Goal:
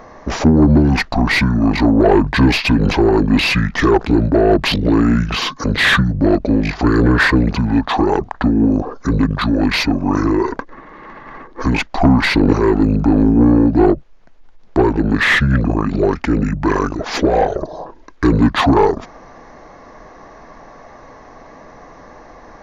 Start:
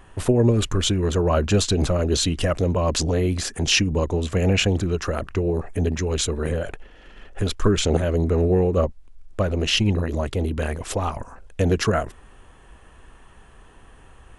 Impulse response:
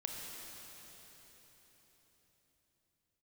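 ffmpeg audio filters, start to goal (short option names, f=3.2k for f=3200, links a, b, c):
-filter_complex "[0:a]asplit=2[a][b];[b]highpass=f=720:p=1,volume=18dB,asoftclip=type=tanh:threshold=-6dB[c];[a][c]amix=inputs=2:normalize=0,lowpass=f=2.2k:p=1,volume=-6dB,asetrate=28048,aresample=44100,volume=5dB"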